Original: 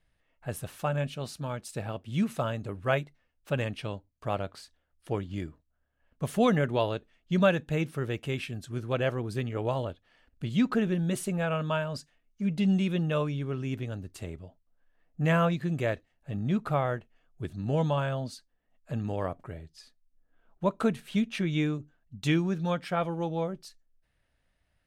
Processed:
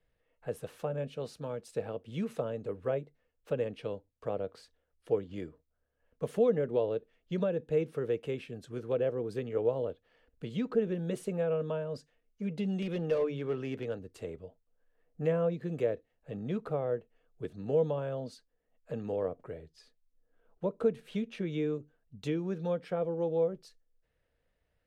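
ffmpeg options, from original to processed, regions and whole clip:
-filter_complex "[0:a]asettb=1/sr,asplit=3[s0][s1][s2];[s0]atrim=end=12.824[s3];[s1]atrim=start=12.82:end=13.99,asetpts=PTS-STARTPTS,afade=t=in:d=0.004:c=qsin,afade=t=out:st=1.166:d=0.004:c=qsin,equalizer=f=2000:w=0.32:g=9,bandreject=f=50:t=h:w=6,bandreject=f=100:t=h:w=6,bandreject=f=150:t=h:w=6,asoftclip=type=hard:threshold=0.0596[s4];[s2]atrim=start=13.986[s5];[s3][s4]acrossfade=d=0.004:c1=hsin:c2=qsin[s6];[s6][s5]acrossfade=d=0.004:c1=qsin:c2=hsin,highshelf=f=5600:g=-7.5,acrossover=split=150|610[s7][s8][s9];[s7]acompressor=threshold=0.00398:ratio=4[s10];[s8]acompressor=threshold=0.0447:ratio=4[s11];[s9]acompressor=threshold=0.00794:ratio=4[s12];[s10][s11][s12]amix=inputs=3:normalize=0,equalizer=f=470:t=o:w=0.37:g=14,volume=0.596"

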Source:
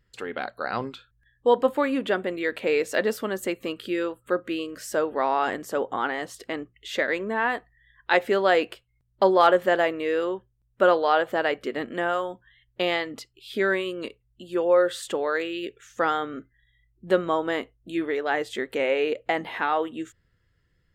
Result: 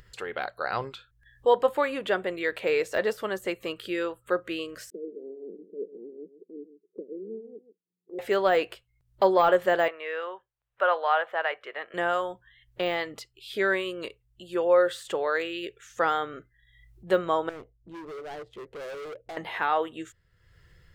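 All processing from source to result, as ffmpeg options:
-filter_complex "[0:a]asettb=1/sr,asplit=3[s0][s1][s2];[s0]atrim=end=4.904[s3];[s1]atrim=start=4.9:end=8.19,asetpts=PTS-STARTPTS,afade=t=in:d=0.004:c=qsin,afade=t=out:st=3.286:d=0.004:c=qsin,tremolo=f=5.3:d=0.52,asuperpass=centerf=290:order=12:qfactor=1.1,aecho=1:1:134:0.224,atrim=end_sample=145089[s4];[s2]atrim=start=8.186[s5];[s3][s4]acrossfade=d=0.004:c1=hsin:c2=qsin[s6];[s6][s5]acrossfade=d=0.004:c1=qsin:c2=hsin,asettb=1/sr,asplit=3[s7][s8][s9];[s7]atrim=end=9.884[s10];[s8]atrim=start=9.88:end=11.94,asetpts=PTS-STARTPTS,afade=t=in:d=0.004:c=qsin,afade=t=out:st=2.056:d=0.004:c=qsin,acrossover=split=560 3300:gain=0.0631 1 0.1[s11][s12][s13];[s11][s12][s13]amix=inputs=3:normalize=0,bandreject=f=4500:w=13[s14];[s9]atrim=start=11.936[s15];[s10][s14]acrossfade=d=0.004:c1=hsin:c2=qsin[s16];[s16][s15]acrossfade=d=0.004:c1=qsin:c2=hsin,asettb=1/sr,asplit=3[s17][s18][s19];[s17]atrim=end=17.494[s20];[s18]atrim=start=17.49:end=19.37,asetpts=PTS-STARTPTS,afade=t=in:d=0.004:c=qsin,afade=t=out:st=1.876:d=0.004:c=qsin,equalizer=f=1700:t=o:w=2.4:g=-14,adynamicsmooth=sensitivity=7:basefreq=1100,volume=56.2,asoftclip=hard,volume=0.0178[s21];[s19]atrim=start=19.366[s22];[s20][s21]acrossfade=d=0.004:c1=hsin:c2=qsin[s23];[s23][s22]acrossfade=d=0.004:c1=qsin:c2=hsin,acompressor=mode=upward:threshold=0.00708:ratio=2.5,equalizer=f=250:t=o:w=0.57:g=-13.5,deesser=0.9"

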